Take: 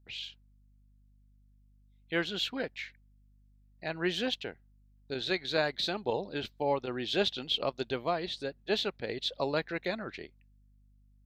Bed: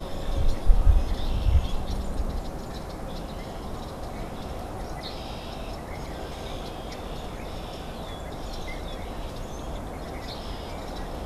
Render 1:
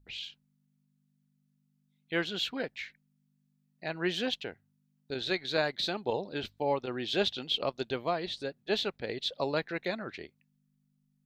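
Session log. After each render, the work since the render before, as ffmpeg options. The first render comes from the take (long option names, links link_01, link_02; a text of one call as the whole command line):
ffmpeg -i in.wav -af "bandreject=frequency=50:width_type=h:width=4,bandreject=frequency=100:width_type=h:width=4" out.wav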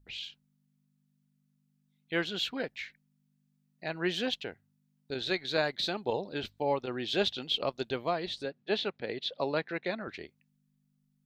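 ffmpeg -i in.wav -filter_complex "[0:a]asettb=1/sr,asplit=3[link_01][link_02][link_03];[link_01]atrim=end=8.454[link_04];[link_02]atrim=start=8.45:end=10.08,asetpts=PTS-STARTPTS,afade=type=in:duration=0.004:curve=qsin,afade=type=out:start_time=1.626:duration=0.004:curve=qsin,highpass=120,lowpass=4300[link_05];[link_03]atrim=start=10.076[link_06];[link_04][link_05]acrossfade=duration=0.004:curve1=hsin:curve2=qsin[link_07];[link_07][link_06]acrossfade=duration=0.004:curve1=qsin:curve2=hsin" out.wav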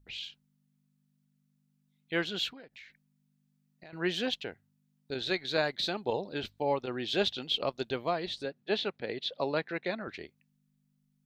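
ffmpeg -i in.wav -filter_complex "[0:a]asettb=1/sr,asplit=3[link_01][link_02][link_03];[link_01]atrim=end=2.514[link_04];[link_02]atrim=start=2.51:end=3.93,asetpts=PTS-STARTPTS,afade=type=in:duration=0.004:curve=qsin,afade=type=out:start_time=1.416:duration=0.004:curve=qsin,acompressor=threshold=-47dB:ratio=8:attack=3.2:release=140:knee=1:detection=peak[link_05];[link_03]atrim=start=3.926[link_06];[link_04][link_05]acrossfade=duration=0.004:curve1=hsin:curve2=qsin[link_07];[link_07][link_06]acrossfade=duration=0.004:curve1=qsin:curve2=hsin" out.wav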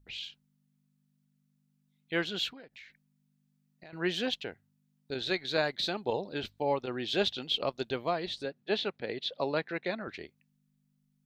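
ffmpeg -i in.wav -af anull out.wav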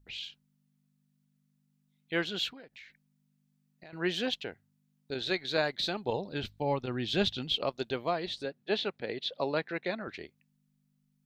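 ffmpeg -i in.wav -filter_complex "[0:a]asettb=1/sr,asplit=3[link_01][link_02][link_03];[link_01]atrim=end=5.694[link_04];[link_02]atrim=start=5.69:end=7.54,asetpts=PTS-STARTPTS,afade=type=in:duration=0.004:curve=qsin,afade=type=out:start_time=1.846:duration=0.004:curve=qsin,asubboost=boost=6.5:cutoff=230[link_05];[link_03]atrim=start=7.536[link_06];[link_04][link_05]acrossfade=duration=0.004:curve1=hsin:curve2=qsin[link_07];[link_07][link_06]acrossfade=duration=0.004:curve1=qsin:curve2=hsin" out.wav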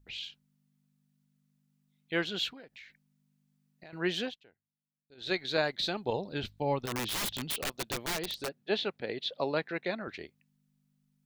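ffmpeg -i in.wav -filter_complex "[0:a]asplit=3[link_01][link_02][link_03];[link_01]afade=type=out:start_time=6.85:duration=0.02[link_04];[link_02]aeval=exprs='(mod(25.1*val(0)+1,2)-1)/25.1':channel_layout=same,afade=type=in:start_time=6.85:duration=0.02,afade=type=out:start_time=8.47:duration=0.02[link_05];[link_03]afade=type=in:start_time=8.47:duration=0.02[link_06];[link_04][link_05][link_06]amix=inputs=3:normalize=0,asplit=3[link_07][link_08][link_09];[link_07]atrim=end=4.35,asetpts=PTS-STARTPTS,afade=type=out:start_time=4.2:duration=0.15:silence=0.0794328[link_10];[link_08]atrim=start=4.35:end=5.17,asetpts=PTS-STARTPTS,volume=-22dB[link_11];[link_09]atrim=start=5.17,asetpts=PTS-STARTPTS,afade=type=in:duration=0.15:silence=0.0794328[link_12];[link_10][link_11][link_12]concat=n=3:v=0:a=1" out.wav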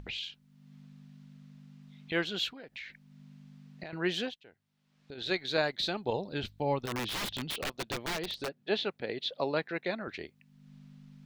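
ffmpeg -i in.wav -filter_complex "[0:a]acrossover=split=5200[link_01][link_02];[link_01]acompressor=mode=upward:threshold=-34dB:ratio=2.5[link_03];[link_02]alimiter=level_in=9.5dB:limit=-24dB:level=0:latency=1:release=444,volume=-9.5dB[link_04];[link_03][link_04]amix=inputs=2:normalize=0" out.wav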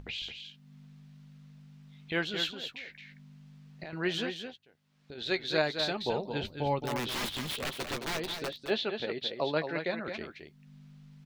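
ffmpeg -i in.wav -filter_complex "[0:a]asplit=2[link_01][link_02];[link_02]adelay=13,volume=-11.5dB[link_03];[link_01][link_03]amix=inputs=2:normalize=0,aecho=1:1:218:0.422" out.wav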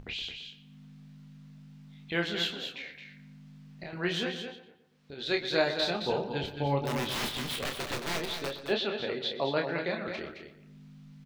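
ffmpeg -i in.wav -filter_complex "[0:a]asplit=2[link_01][link_02];[link_02]adelay=29,volume=-5dB[link_03];[link_01][link_03]amix=inputs=2:normalize=0,asplit=2[link_04][link_05];[link_05]adelay=120,lowpass=frequency=2800:poles=1,volume=-12dB,asplit=2[link_06][link_07];[link_07]adelay=120,lowpass=frequency=2800:poles=1,volume=0.45,asplit=2[link_08][link_09];[link_09]adelay=120,lowpass=frequency=2800:poles=1,volume=0.45,asplit=2[link_10][link_11];[link_11]adelay=120,lowpass=frequency=2800:poles=1,volume=0.45,asplit=2[link_12][link_13];[link_13]adelay=120,lowpass=frequency=2800:poles=1,volume=0.45[link_14];[link_04][link_06][link_08][link_10][link_12][link_14]amix=inputs=6:normalize=0" out.wav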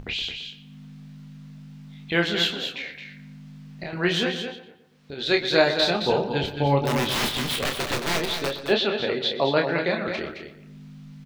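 ffmpeg -i in.wav -af "volume=8dB" out.wav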